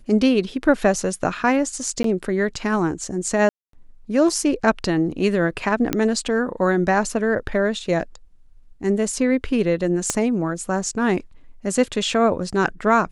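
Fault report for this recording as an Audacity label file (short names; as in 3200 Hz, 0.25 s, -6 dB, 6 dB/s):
2.030000	2.040000	gap 13 ms
3.490000	3.730000	gap 0.243 s
5.930000	5.930000	pop -6 dBFS
10.100000	10.100000	pop -6 dBFS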